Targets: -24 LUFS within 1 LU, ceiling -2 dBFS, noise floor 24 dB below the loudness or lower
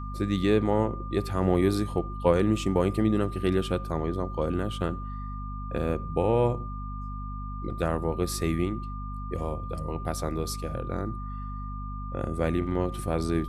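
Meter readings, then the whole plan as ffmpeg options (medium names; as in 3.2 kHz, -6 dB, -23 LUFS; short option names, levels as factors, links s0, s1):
hum 50 Hz; highest harmonic 250 Hz; hum level -33 dBFS; steady tone 1.2 kHz; tone level -40 dBFS; loudness -29.0 LUFS; peak level -8.0 dBFS; loudness target -24.0 LUFS
-> -af "bandreject=f=50:t=h:w=6,bandreject=f=100:t=h:w=6,bandreject=f=150:t=h:w=6,bandreject=f=200:t=h:w=6,bandreject=f=250:t=h:w=6"
-af "bandreject=f=1200:w=30"
-af "volume=1.78"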